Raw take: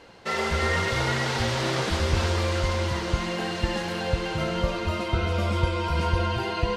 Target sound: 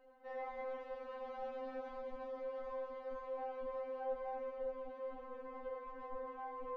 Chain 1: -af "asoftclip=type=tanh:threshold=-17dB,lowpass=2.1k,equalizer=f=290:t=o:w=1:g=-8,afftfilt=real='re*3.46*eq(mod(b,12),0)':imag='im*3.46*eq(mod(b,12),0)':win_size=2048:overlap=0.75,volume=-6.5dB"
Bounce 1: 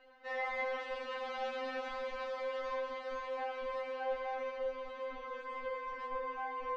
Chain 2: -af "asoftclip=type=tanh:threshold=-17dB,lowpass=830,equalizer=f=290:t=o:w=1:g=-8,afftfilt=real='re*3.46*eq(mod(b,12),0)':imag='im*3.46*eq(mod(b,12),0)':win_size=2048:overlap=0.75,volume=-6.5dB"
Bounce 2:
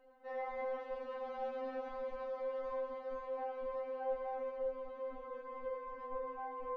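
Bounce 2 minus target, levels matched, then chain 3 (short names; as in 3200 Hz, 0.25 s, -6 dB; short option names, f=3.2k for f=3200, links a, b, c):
soft clip: distortion -8 dB
-af "asoftclip=type=tanh:threshold=-26dB,lowpass=830,equalizer=f=290:t=o:w=1:g=-8,afftfilt=real='re*3.46*eq(mod(b,12),0)':imag='im*3.46*eq(mod(b,12),0)':win_size=2048:overlap=0.75,volume=-6.5dB"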